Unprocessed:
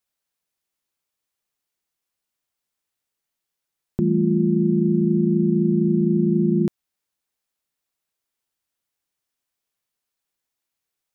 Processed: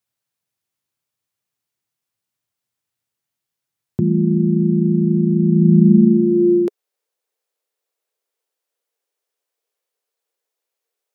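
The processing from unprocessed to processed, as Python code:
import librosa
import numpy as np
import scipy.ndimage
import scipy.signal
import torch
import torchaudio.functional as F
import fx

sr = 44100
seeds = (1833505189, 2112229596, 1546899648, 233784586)

y = fx.filter_sweep_highpass(x, sr, from_hz=110.0, to_hz=460.0, start_s=5.34, end_s=6.79, q=3.9)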